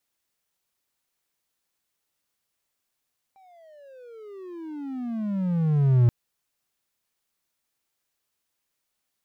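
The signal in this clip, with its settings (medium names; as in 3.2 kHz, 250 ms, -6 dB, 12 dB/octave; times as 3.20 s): gliding synth tone triangle, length 2.73 s, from 787 Hz, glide -33 st, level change +38.5 dB, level -11.5 dB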